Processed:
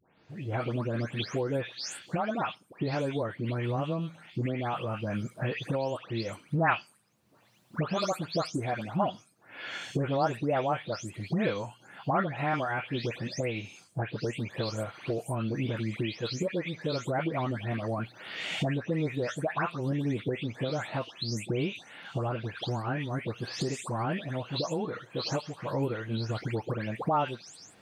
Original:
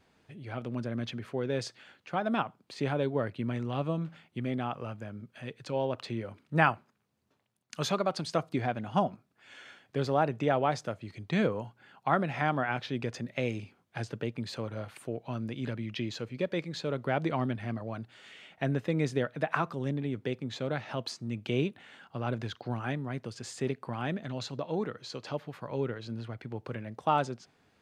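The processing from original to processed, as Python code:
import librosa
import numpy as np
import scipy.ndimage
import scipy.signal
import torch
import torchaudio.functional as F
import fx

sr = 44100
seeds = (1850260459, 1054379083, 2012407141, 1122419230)

y = fx.spec_delay(x, sr, highs='late', ms=297)
y = fx.recorder_agc(y, sr, target_db=-21.5, rise_db_per_s=20.0, max_gain_db=30)
y = fx.low_shelf(y, sr, hz=79.0, db=-5.5)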